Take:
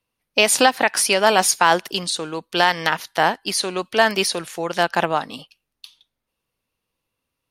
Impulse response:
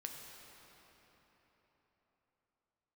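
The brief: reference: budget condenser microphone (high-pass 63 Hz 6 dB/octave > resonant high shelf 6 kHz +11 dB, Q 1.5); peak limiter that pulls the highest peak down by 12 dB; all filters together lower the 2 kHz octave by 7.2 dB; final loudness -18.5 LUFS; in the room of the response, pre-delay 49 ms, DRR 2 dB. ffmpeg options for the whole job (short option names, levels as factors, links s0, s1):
-filter_complex "[0:a]equalizer=f=2000:t=o:g=-8.5,alimiter=limit=0.178:level=0:latency=1,asplit=2[s0][s1];[1:a]atrim=start_sample=2205,adelay=49[s2];[s1][s2]afir=irnorm=-1:irlink=0,volume=1.06[s3];[s0][s3]amix=inputs=2:normalize=0,highpass=f=63:p=1,highshelf=f=6000:t=q:w=1.5:g=11,volume=0.944"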